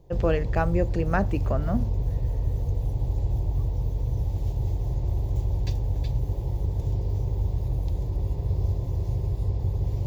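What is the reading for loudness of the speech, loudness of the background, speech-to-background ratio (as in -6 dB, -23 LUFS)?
-28.0 LUFS, -28.5 LUFS, 0.5 dB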